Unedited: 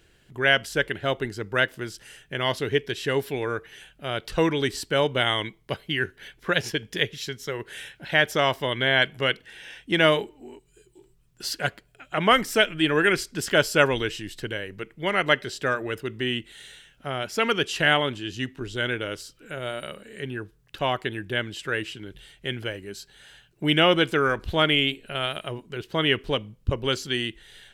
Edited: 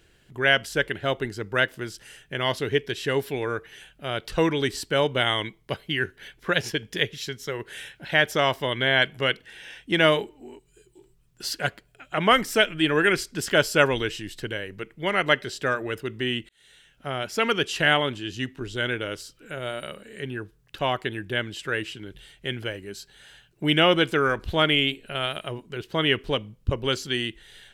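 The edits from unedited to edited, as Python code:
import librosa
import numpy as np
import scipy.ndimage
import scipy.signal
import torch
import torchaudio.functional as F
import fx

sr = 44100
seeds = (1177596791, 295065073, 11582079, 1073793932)

y = fx.edit(x, sr, fx.fade_in_span(start_s=16.49, length_s=0.59), tone=tone)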